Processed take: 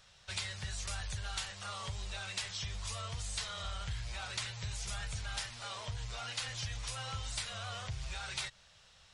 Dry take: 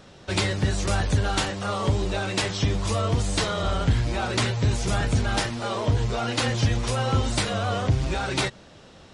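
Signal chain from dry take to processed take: amplifier tone stack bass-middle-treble 10-0-10; compression 2:1, threshold -33 dBFS, peak gain reduction 5.5 dB; trim -5 dB

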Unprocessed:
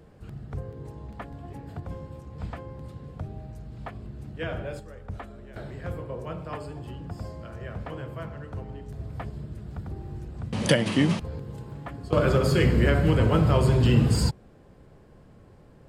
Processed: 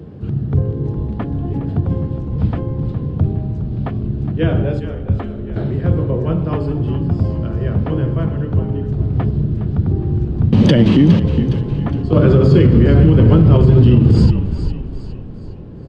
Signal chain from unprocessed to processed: high-pass 73 Hz 24 dB/octave; high-order bell 1.1 kHz -9 dB 2.5 oct; compression, threshold -23 dBFS, peak gain reduction 8.5 dB; tape spacing loss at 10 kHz 35 dB; frequency-shifting echo 412 ms, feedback 44%, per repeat -40 Hz, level -12 dB; loudness maximiser +22 dB; trim -1 dB

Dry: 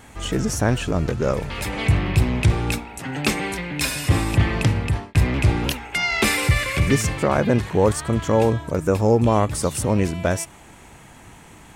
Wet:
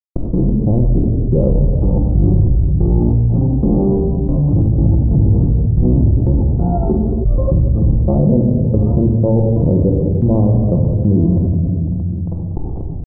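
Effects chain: bass shelf 67 Hz +8.5 dB; peak limiter -14 dBFS, peak gain reduction 11 dB; level rider gain up to 11.5 dB; bit crusher 4-bit; Gaussian low-pass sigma 16 samples; tempo 0.9×; trance gate "x.x.xx..x" 91 bpm -24 dB; on a send at -2.5 dB: reverberation RT60 1.2 s, pre-delay 6 ms; on the sum: level flattener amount 70%; trim -4.5 dB

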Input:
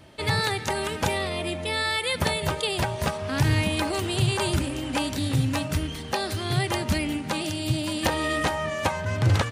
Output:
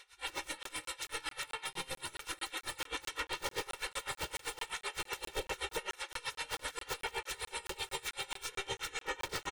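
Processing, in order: high-pass 50 Hz 24 dB/octave; on a send: feedback delay 366 ms, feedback 19%, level -10 dB; on the sum: saturation -20 dBFS, distortion -14 dB; spectral gate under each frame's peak -20 dB weak; band-stop 4.7 kHz, Q 5.2; integer overflow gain 30 dB; comb 2.2 ms, depth 95%; peak limiter -33.5 dBFS, peak gain reduction 9 dB; treble shelf 7.8 kHz -11.5 dB; crackling interface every 0.22 s, samples 1024, zero, from 0.63 s; logarithmic tremolo 7.8 Hz, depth 23 dB; trim +10 dB

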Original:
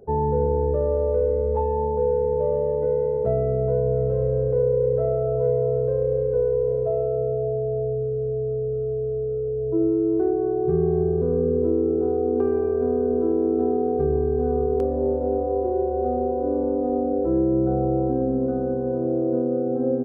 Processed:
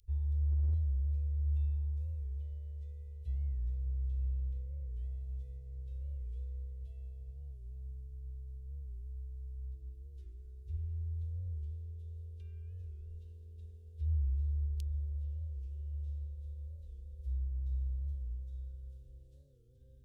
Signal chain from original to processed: inverse Chebyshev band-stop 160–1400 Hz, stop band 50 dB; overload inside the chain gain 28.5 dB; warped record 45 rpm, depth 160 cents; trim +2 dB

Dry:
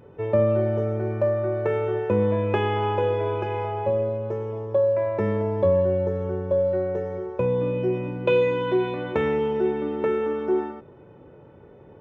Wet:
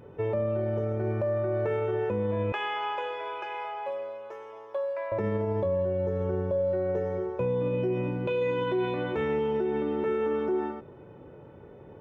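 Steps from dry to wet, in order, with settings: 2.52–5.12 s: high-pass 1 kHz 12 dB/octave; peak limiter -21 dBFS, peak gain reduction 11 dB

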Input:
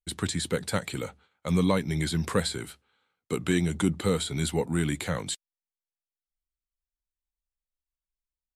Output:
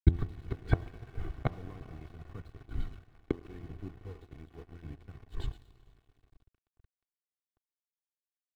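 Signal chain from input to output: tilt EQ -2 dB/octave; phaser 0.8 Hz, delay 3.8 ms, feedback 36%; on a send: frequency-shifting echo 115 ms, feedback 34%, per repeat -70 Hz, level -12.5 dB; on the sum: inverted gate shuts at -22 dBFS, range -34 dB; reverberation RT60 5.8 s, pre-delay 58 ms, DRR 11.5 dB; in parallel at -2 dB: compression 20:1, threshold -58 dBFS, peak gain reduction 30.5 dB; on the sum: low-pass 5.4 kHz 12 dB/octave; bit crusher 10-bit; de-hum 85.41 Hz, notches 13; crossover distortion -56 dBFS; tone controls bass +11 dB, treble -14 dB; comb 2.7 ms, depth 60%; trim +5 dB

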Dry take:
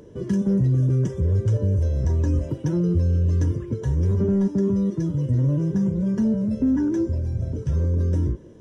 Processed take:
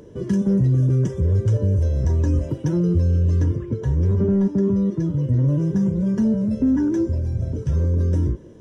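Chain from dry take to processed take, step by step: 3.41–5.48 s: treble shelf 5.3 kHz -10 dB; trim +2 dB

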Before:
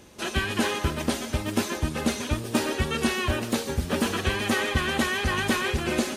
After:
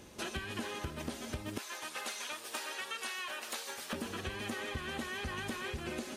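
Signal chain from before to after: 1.58–3.93 s: high-pass 900 Hz 12 dB/octave; compression 6:1, threshold -34 dBFS, peak gain reduction 14 dB; trim -3 dB

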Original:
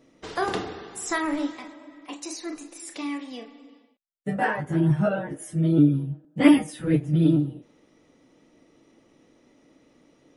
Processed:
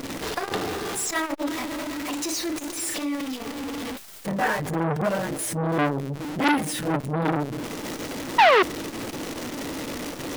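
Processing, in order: jump at every zero crossing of -25 dBFS; painted sound fall, 8.38–8.63 s, 340–1000 Hz -10 dBFS; transformer saturation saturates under 2 kHz

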